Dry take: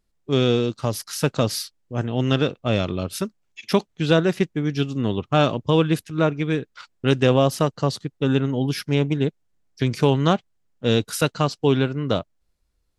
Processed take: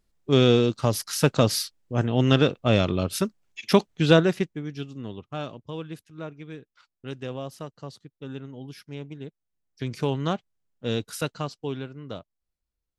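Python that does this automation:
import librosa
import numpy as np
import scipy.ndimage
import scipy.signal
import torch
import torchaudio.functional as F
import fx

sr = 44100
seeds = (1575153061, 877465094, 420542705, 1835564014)

y = fx.gain(x, sr, db=fx.line((4.15, 1.0), (4.66, -10.5), (5.7, -17.0), (9.24, -17.0), (9.96, -8.0), (11.27, -8.0), (11.83, -14.5)))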